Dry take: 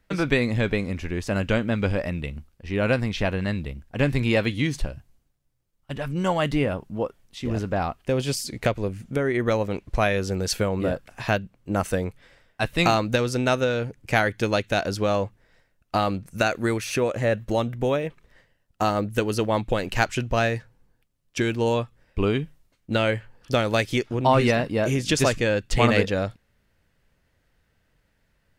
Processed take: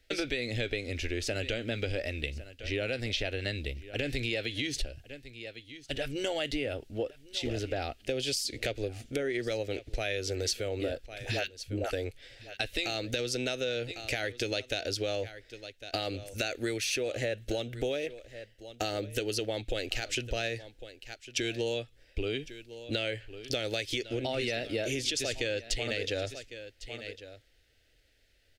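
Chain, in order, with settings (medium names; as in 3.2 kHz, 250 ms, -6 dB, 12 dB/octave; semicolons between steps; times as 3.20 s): 11.06–11.93 s: phase dispersion highs, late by 99 ms, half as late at 400 Hz; on a send: delay 1102 ms -22 dB; on the sum: peak limiter -14 dBFS, peak gain reduction 10.5 dB; peaking EQ 3.7 kHz +9 dB 1.9 oct; static phaser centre 430 Hz, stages 4; compression 6:1, threshold -29 dBFS, peak gain reduction 12 dB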